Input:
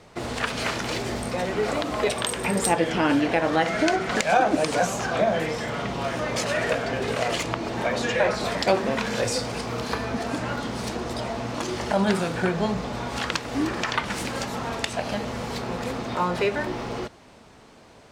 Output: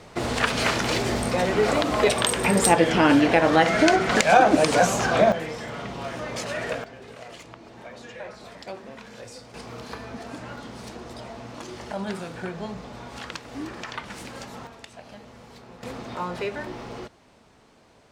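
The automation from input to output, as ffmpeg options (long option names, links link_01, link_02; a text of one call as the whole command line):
ffmpeg -i in.wav -af "asetnsamples=nb_out_samples=441:pad=0,asendcmd='5.32 volume volume -5dB;6.84 volume volume -16.5dB;9.54 volume volume -9dB;14.67 volume volume -16dB;15.83 volume volume -6dB',volume=4dB" out.wav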